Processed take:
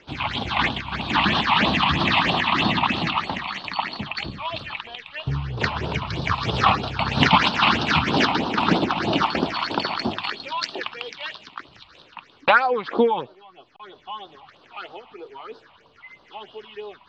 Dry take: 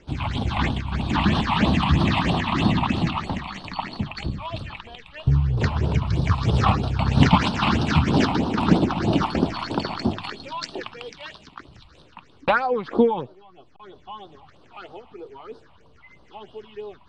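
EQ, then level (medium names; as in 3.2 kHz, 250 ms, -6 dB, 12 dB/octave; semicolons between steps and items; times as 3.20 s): distance through air 230 m; tilt EQ +4 dB/octave; +5.0 dB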